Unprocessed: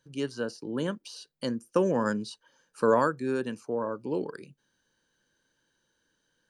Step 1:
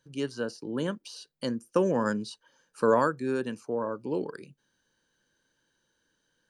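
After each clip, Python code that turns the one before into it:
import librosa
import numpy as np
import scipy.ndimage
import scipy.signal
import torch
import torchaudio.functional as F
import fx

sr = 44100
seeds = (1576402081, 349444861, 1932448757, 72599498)

y = x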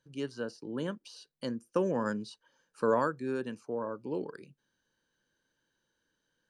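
y = fx.high_shelf(x, sr, hz=6800.0, db=-6.0)
y = y * librosa.db_to_amplitude(-4.5)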